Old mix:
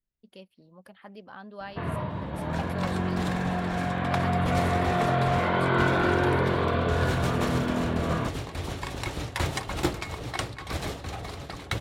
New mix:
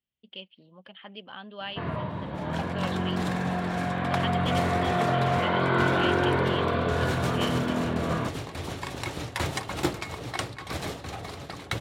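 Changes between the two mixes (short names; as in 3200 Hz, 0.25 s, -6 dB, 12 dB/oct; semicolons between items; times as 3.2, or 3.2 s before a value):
speech: add synth low-pass 3100 Hz, resonance Q 7.1; master: add HPF 89 Hz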